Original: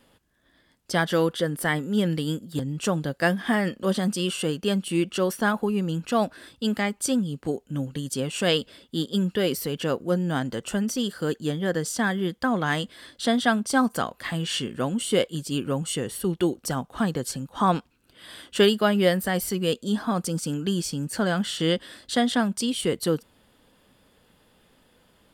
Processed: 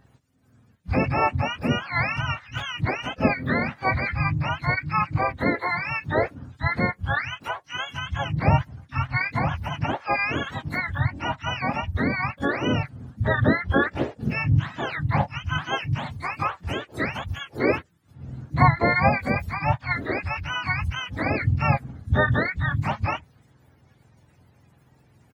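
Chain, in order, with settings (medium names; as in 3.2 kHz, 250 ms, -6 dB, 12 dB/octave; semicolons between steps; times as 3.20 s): spectrum inverted on a logarithmic axis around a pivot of 660 Hz; harmony voices -7 st -5 dB, -3 st -5 dB, +12 st -16 dB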